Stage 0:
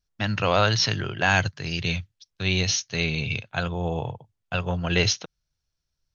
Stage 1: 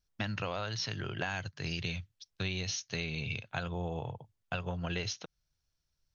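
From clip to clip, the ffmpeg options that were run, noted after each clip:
-af "acompressor=threshold=-31dB:ratio=10,volume=-1.5dB"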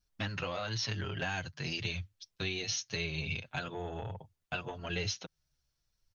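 -filter_complex "[0:a]acrossover=split=1900[a][b];[a]asoftclip=type=tanh:threshold=-30.5dB[c];[c][b]amix=inputs=2:normalize=0,asplit=2[d][e];[e]adelay=6.9,afreqshift=-1[f];[d][f]amix=inputs=2:normalize=1,volume=4.5dB"

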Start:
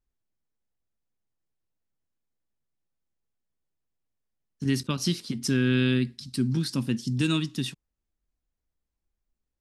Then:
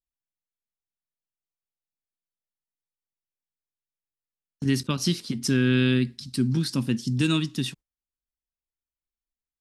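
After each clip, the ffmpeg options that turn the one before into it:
-af "agate=range=-18dB:threshold=-46dB:ratio=16:detection=peak,volume=2dB"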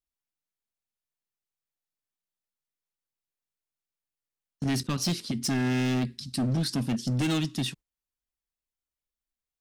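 -af "asoftclip=type=hard:threshold=-23dB"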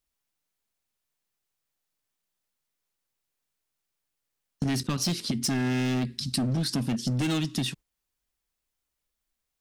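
-af "acompressor=threshold=-34dB:ratio=6,volume=8.5dB"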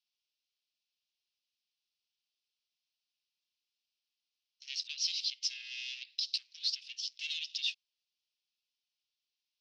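-af "aeval=exprs='0.158*(cos(1*acos(clip(val(0)/0.158,-1,1)))-cos(1*PI/2))+0.00891*(cos(5*acos(clip(val(0)/0.158,-1,1)))-cos(5*PI/2))':c=same,asoftclip=type=tanh:threshold=-21.5dB,asuperpass=centerf=3800:order=8:qfactor=1.2"

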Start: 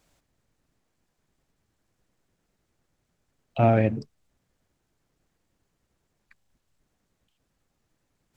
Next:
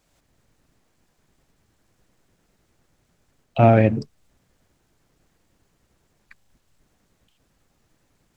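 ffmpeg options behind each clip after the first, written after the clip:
-af "dynaudnorm=f=130:g=3:m=9dB"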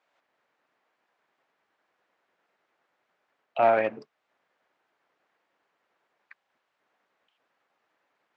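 -af "aeval=exprs='clip(val(0),-1,0.237)':c=same,highpass=690,lowpass=2.3k"

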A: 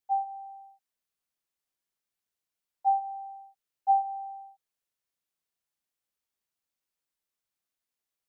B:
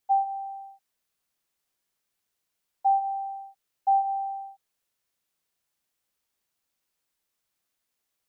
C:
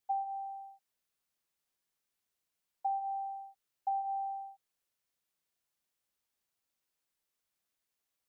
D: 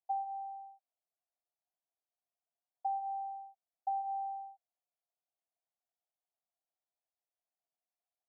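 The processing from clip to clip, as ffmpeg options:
-af "alimiter=limit=-24dB:level=0:latency=1:release=175,volume=7.5dB"
-af "acompressor=threshold=-26dB:ratio=6,volume=-5.5dB"
-af "bandpass=f=700:t=q:w=7:csg=0,volume=4dB"

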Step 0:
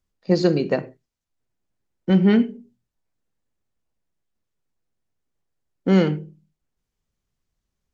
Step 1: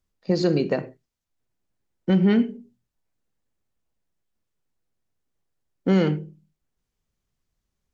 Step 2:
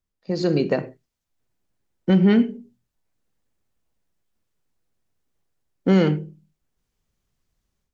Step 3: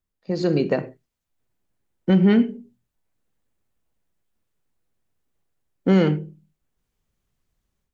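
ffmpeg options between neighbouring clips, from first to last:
-af "alimiter=limit=-11dB:level=0:latency=1:release=80"
-af "dynaudnorm=f=300:g=3:m=9.5dB,volume=-5.5dB"
-af "equalizer=f=5.3k:w=1.5:g=-3.5"

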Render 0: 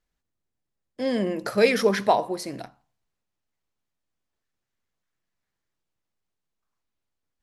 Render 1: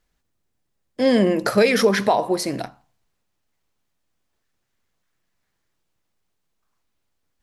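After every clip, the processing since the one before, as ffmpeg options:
-af "alimiter=limit=-15dB:level=0:latency=1:release=212,volume=8.5dB"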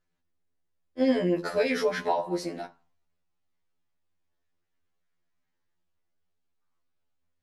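-af "highshelf=f=6.8k:g=-11.5,afftfilt=real='re*2*eq(mod(b,4),0)':imag='im*2*eq(mod(b,4),0)':win_size=2048:overlap=0.75,volume=-5.5dB"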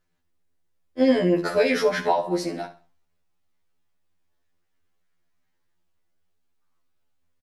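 -af "aecho=1:1:66|132|198:0.188|0.0546|0.0158,volume=5dB"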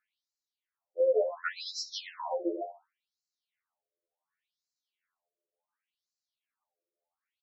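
-af "alimiter=limit=-12.5dB:level=0:latency=1:release=125,afftfilt=real='re*between(b*sr/1024,450*pow(5600/450,0.5+0.5*sin(2*PI*0.69*pts/sr))/1.41,450*pow(5600/450,0.5+0.5*sin(2*PI*0.69*pts/sr))*1.41)':imag='im*between(b*sr/1024,450*pow(5600/450,0.5+0.5*sin(2*PI*0.69*pts/sr))/1.41,450*pow(5600/450,0.5+0.5*sin(2*PI*0.69*pts/sr))*1.41)':win_size=1024:overlap=0.75"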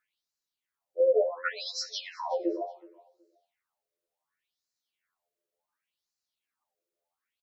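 -af "aecho=1:1:372|744:0.0708|0.0163,volume=2.5dB"

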